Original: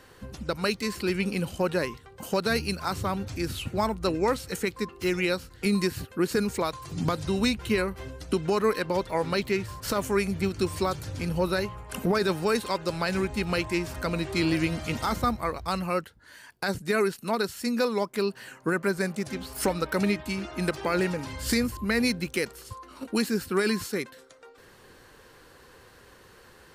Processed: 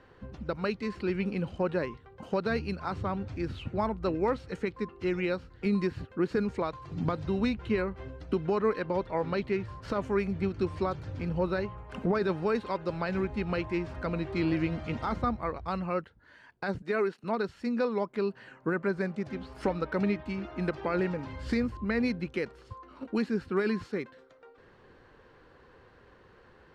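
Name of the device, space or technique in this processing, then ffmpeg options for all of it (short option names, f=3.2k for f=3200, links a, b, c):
phone in a pocket: -filter_complex "[0:a]lowpass=4k,highshelf=f=2.5k:g=-10,asettb=1/sr,asplit=3[a][b][c];[a]atrim=end=16.824[d];[b]atrim=start=16.82:end=17.24,asetpts=PTS-STARTPTS,afade=t=in:d=0.004:c=qsin,afade=t=out:st=0.416:d=0.004:c=qsin,highpass=240[e];[c]atrim=start=17.236[f];[d][e]acrossfade=d=0.004:c1=hsin:c2=qsin[g];[g][f]acrossfade=d=0.004:c1=qsin:c2=hsin,volume=-2.5dB"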